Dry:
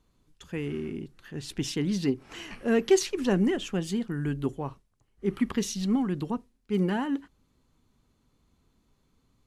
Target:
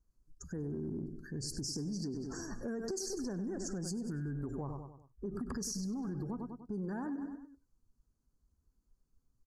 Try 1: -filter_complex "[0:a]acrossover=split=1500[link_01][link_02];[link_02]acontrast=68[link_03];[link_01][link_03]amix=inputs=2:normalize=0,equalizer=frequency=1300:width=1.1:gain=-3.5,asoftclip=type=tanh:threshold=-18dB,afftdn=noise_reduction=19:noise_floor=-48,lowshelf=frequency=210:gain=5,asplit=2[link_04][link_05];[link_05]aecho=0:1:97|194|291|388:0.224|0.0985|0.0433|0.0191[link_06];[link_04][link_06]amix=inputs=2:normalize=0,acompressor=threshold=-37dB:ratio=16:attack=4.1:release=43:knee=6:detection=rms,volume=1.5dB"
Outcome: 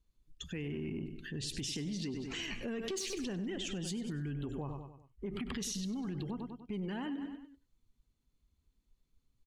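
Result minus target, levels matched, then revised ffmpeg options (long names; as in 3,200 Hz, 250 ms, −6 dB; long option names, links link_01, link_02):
soft clipping: distortion +17 dB; 2,000 Hz band +6.5 dB
-filter_complex "[0:a]acrossover=split=1500[link_01][link_02];[link_02]acontrast=68[link_03];[link_01][link_03]amix=inputs=2:normalize=0,asuperstop=centerf=2800:order=12:qfactor=0.96,equalizer=frequency=1300:width=1.1:gain=-3.5,asoftclip=type=tanh:threshold=-7.5dB,afftdn=noise_reduction=19:noise_floor=-48,lowshelf=frequency=210:gain=5,asplit=2[link_04][link_05];[link_05]aecho=0:1:97|194|291|388:0.224|0.0985|0.0433|0.0191[link_06];[link_04][link_06]amix=inputs=2:normalize=0,acompressor=threshold=-37dB:ratio=16:attack=4.1:release=43:knee=6:detection=rms,volume=1.5dB"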